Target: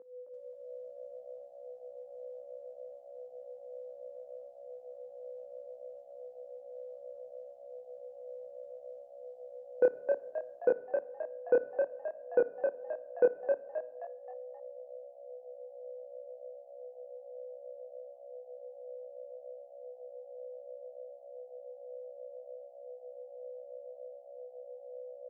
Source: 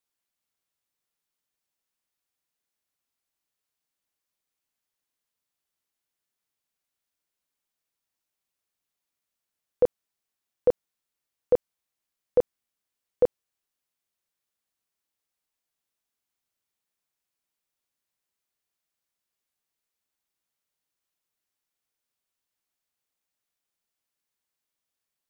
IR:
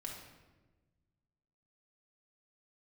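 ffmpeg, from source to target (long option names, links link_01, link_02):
-filter_complex "[0:a]afwtdn=0.00891,aeval=exprs='val(0)+0.00501*sin(2*PI*500*n/s)':channel_layout=same,asoftclip=type=tanh:threshold=-16dB,flanger=delay=19:depth=7:speed=0.66,asuperpass=centerf=670:order=4:qfactor=0.5,asplit=6[link_01][link_02][link_03][link_04][link_05][link_06];[link_02]adelay=264,afreqshift=65,volume=-5dB[link_07];[link_03]adelay=528,afreqshift=130,volume=-12.5dB[link_08];[link_04]adelay=792,afreqshift=195,volume=-20.1dB[link_09];[link_05]adelay=1056,afreqshift=260,volume=-27.6dB[link_10];[link_06]adelay=1320,afreqshift=325,volume=-35.1dB[link_11];[link_01][link_07][link_08][link_09][link_10][link_11]amix=inputs=6:normalize=0,asplit=2[link_12][link_13];[1:a]atrim=start_sample=2205,adelay=56[link_14];[link_13][link_14]afir=irnorm=-1:irlink=0,volume=-15dB[link_15];[link_12][link_15]amix=inputs=2:normalize=0,volume=3dB" -ar 48000 -c:a libopus -b:a 48k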